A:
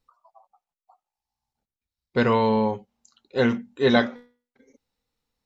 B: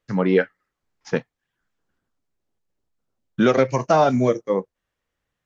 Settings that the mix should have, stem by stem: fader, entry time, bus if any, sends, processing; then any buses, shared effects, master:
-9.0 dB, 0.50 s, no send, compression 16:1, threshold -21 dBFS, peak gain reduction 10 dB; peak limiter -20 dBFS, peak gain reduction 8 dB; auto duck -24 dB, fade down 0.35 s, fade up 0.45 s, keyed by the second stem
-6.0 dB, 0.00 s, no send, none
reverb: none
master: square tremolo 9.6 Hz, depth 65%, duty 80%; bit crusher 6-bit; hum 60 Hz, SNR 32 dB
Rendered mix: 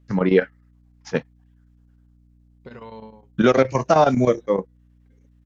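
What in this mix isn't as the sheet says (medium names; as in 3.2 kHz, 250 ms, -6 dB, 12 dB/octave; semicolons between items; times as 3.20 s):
stem B -6.0 dB -> +1.5 dB; master: missing bit crusher 6-bit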